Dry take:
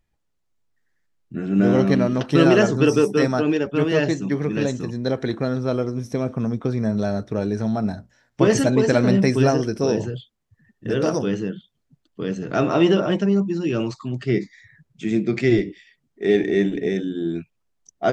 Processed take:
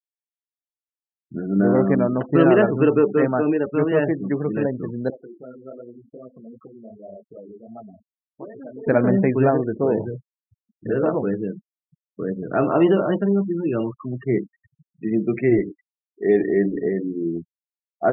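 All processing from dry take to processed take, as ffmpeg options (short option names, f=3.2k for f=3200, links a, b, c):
-filter_complex "[0:a]asettb=1/sr,asplit=3[a][b][c];[a]atrim=end=5.104[d];[b]atrim=start=5.1:end=8.87,asetpts=PTS-STARTPTS,afade=t=in:d=0.004:c=qsin,afade=t=out:st=3.766:d=0.004:c=qsin,acompressor=threshold=-32dB:ratio=2.5:attack=3.2:release=140:knee=1:detection=peak,flanger=delay=16:depth=6.8:speed=2.6,highpass=f=420:p=1[e];[c]atrim=start=8.866[f];[d][e]acrossfade=d=0.004:c1=hsin:c2=qsin[g];[g][f]acrossfade=d=0.004:c1=qsin:c2=hsin,lowpass=1.6k,afftfilt=real='re*gte(hypot(re,im),0.0224)':imag='im*gte(hypot(re,im),0.0224)':win_size=1024:overlap=0.75,lowshelf=f=190:g=-7,volume=2dB"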